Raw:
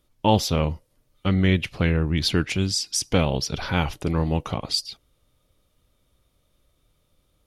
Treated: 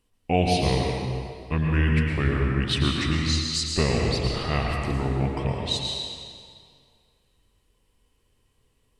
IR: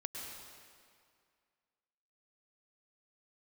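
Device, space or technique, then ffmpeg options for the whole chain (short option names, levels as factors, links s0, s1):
slowed and reverbed: -filter_complex "[0:a]asetrate=36603,aresample=44100[s0];[1:a]atrim=start_sample=2205[s1];[s0][s1]afir=irnorm=-1:irlink=0"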